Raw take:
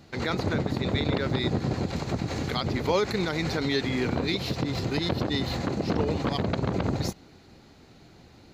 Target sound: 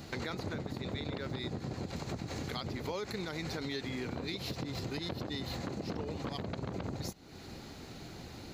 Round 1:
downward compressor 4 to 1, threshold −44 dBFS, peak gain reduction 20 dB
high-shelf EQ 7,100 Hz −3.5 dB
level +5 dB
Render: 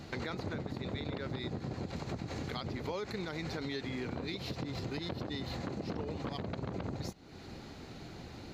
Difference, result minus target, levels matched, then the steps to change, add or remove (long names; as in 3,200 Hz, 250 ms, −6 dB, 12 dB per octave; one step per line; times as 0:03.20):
8,000 Hz band −4.5 dB
change: high-shelf EQ 7,100 Hz +7.5 dB